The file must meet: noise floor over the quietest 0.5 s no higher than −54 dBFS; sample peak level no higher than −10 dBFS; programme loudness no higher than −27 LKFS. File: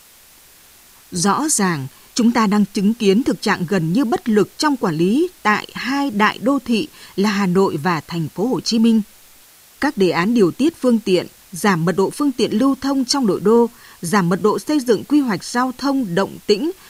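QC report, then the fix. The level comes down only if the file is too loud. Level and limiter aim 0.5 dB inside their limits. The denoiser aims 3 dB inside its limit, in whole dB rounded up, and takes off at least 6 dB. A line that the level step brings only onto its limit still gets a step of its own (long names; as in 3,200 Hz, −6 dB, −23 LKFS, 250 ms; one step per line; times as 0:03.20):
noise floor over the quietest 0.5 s −47 dBFS: out of spec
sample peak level −3.0 dBFS: out of spec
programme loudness −18.0 LKFS: out of spec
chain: level −9.5 dB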